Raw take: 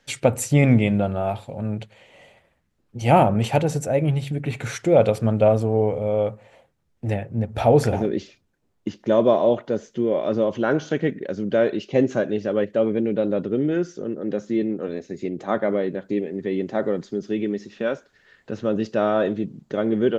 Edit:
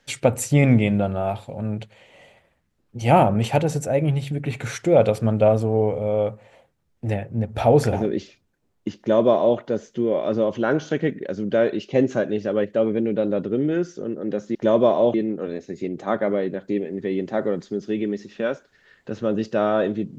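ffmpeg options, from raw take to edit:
-filter_complex "[0:a]asplit=3[a][b][c];[a]atrim=end=14.552[d];[b]atrim=start=8.988:end=9.582[e];[c]atrim=start=14.548[f];[d][e]acrossfade=d=0.004:c1=hsin:c2=hsin[g];[g][f]acrossfade=d=0.004:c1=hsin:c2=hsin"

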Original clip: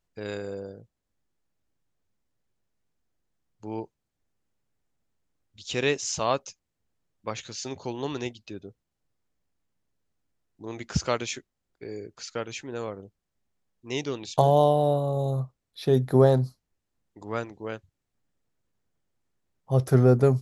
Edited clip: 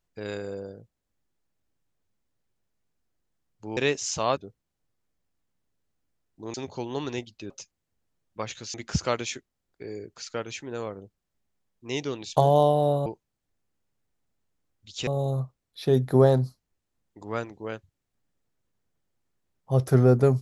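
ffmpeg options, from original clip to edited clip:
-filter_complex "[0:a]asplit=8[a][b][c][d][e][f][g][h];[a]atrim=end=3.772[i];[b]atrim=start=5.778:end=6.382[j];[c]atrim=start=8.578:end=10.752[k];[d]atrim=start=7.618:end=8.582[l];[e]atrim=start=6.378:end=7.622[m];[f]atrim=start=10.748:end=15.072[n];[g]atrim=start=3.768:end=5.782[o];[h]atrim=start=15.068[p];[i][j]acrossfade=d=0.004:c1=hsin:c2=hsin[q];[q][k]acrossfade=d=0.004:c1=hsin:c2=hsin[r];[r][l]acrossfade=d=0.004:c1=hsin:c2=hsin[s];[s][m]acrossfade=d=0.004:c1=hsin:c2=hsin[t];[t][n]acrossfade=d=0.004:c1=hsin:c2=hsin[u];[u][o]acrossfade=d=0.004:c1=hsin:c2=hsin[v];[v][p]acrossfade=d=0.004:c1=hsin:c2=hsin"

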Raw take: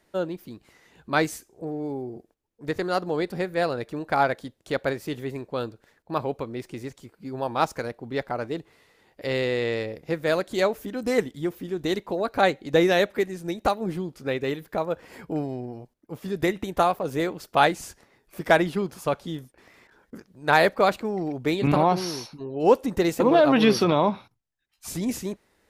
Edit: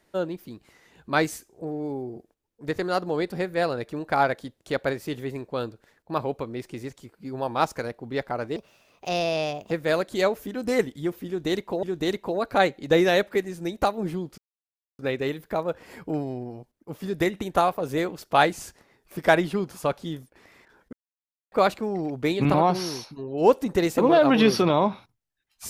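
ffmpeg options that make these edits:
-filter_complex "[0:a]asplit=7[a][b][c][d][e][f][g];[a]atrim=end=8.564[h];[b]atrim=start=8.56:end=10.1,asetpts=PTS-STARTPTS,asetrate=59094,aresample=44100,atrim=end_sample=50682,asetpts=PTS-STARTPTS[i];[c]atrim=start=10.096:end=12.222[j];[d]atrim=start=11.658:end=14.21,asetpts=PTS-STARTPTS,afade=t=out:st=2.548:d=0.004:c=hsin,apad=pad_dur=0.61[k];[e]atrim=start=14.21:end=20.15,asetpts=PTS-STARTPTS,afade=t=in:d=0.004:c=hsin,afade=t=out:st=5.936:d=0.004:c=hsin[l];[f]atrim=start=20.15:end=20.74,asetpts=PTS-STARTPTS,volume=0[m];[g]atrim=start=20.74,asetpts=PTS-STARTPTS,afade=t=in:d=0.004:c=hsin[n];[h][i]acrossfade=d=0.004:c1=hsin:c2=hsin[o];[o][j]acrossfade=d=0.004:c1=hsin:c2=hsin[p];[k][l][m][n]concat=n=4:v=0:a=1[q];[p][q]acrossfade=d=0.004:c1=hsin:c2=hsin"

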